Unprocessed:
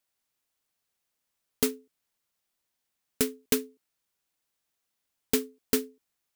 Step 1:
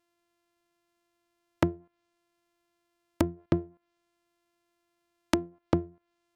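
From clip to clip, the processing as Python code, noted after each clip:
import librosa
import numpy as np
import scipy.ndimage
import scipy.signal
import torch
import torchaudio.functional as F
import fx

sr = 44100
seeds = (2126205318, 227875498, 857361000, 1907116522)

y = np.r_[np.sort(x[:len(x) // 128 * 128].reshape(-1, 128), axis=1).ravel(), x[len(x) // 128 * 128:]]
y = fx.env_lowpass_down(y, sr, base_hz=320.0, full_db=-28.0)
y = y * librosa.db_to_amplitude(4.0)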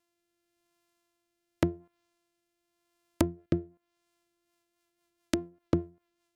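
y = fx.high_shelf(x, sr, hz=4200.0, db=6.5)
y = fx.rotary_switch(y, sr, hz=0.9, then_hz=5.0, switch_at_s=4.0)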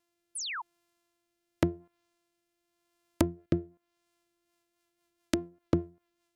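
y = fx.spec_paint(x, sr, seeds[0], shape='fall', start_s=0.35, length_s=0.27, low_hz=830.0, high_hz=11000.0, level_db=-36.0)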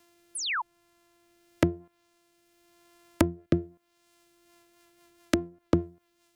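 y = fx.band_squash(x, sr, depth_pct=40)
y = y * librosa.db_to_amplitude(5.0)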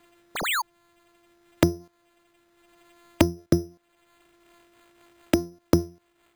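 y = np.repeat(x[::8], 8)[:len(x)]
y = y * librosa.db_to_amplitude(4.0)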